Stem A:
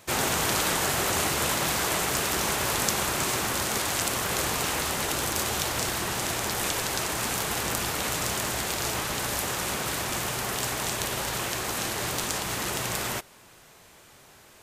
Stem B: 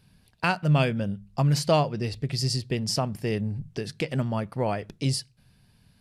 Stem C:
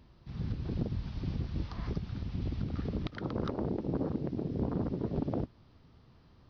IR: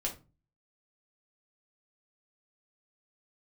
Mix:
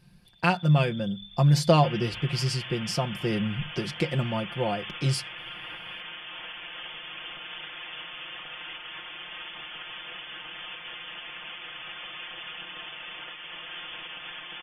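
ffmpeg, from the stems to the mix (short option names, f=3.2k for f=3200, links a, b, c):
-filter_complex "[0:a]equalizer=f=62:t=o:w=1.3:g=-12.5,aecho=1:1:6.4:0.47,adelay=1750,volume=-5.5dB[a];[1:a]deesser=0.45,highshelf=f=4.5k:g=-4,tremolo=f=0.54:d=0.37,volume=1dB[b];[2:a]acompressor=threshold=-45dB:ratio=2.5,adelay=250,volume=-5.5dB[c];[a][c]amix=inputs=2:normalize=0,lowpass=f=3.1k:t=q:w=0.5098,lowpass=f=3.1k:t=q:w=0.6013,lowpass=f=3.1k:t=q:w=0.9,lowpass=f=3.1k:t=q:w=2.563,afreqshift=-3600,alimiter=level_in=7.5dB:limit=-24dB:level=0:latency=1:release=439,volume=-7.5dB,volume=0dB[d];[b][d]amix=inputs=2:normalize=0,aecho=1:1:5.7:0.65"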